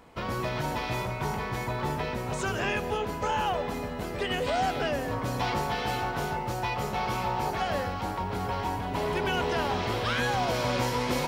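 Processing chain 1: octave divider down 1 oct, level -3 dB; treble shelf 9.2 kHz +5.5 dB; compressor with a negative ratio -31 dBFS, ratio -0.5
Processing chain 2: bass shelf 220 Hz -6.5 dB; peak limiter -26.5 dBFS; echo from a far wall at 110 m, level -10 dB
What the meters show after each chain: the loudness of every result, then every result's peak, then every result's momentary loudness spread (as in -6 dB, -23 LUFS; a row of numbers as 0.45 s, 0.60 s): -32.0 LUFS, -35.0 LUFS; -16.0 dBFS, -24.5 dBFS; 4 LU, 1 LU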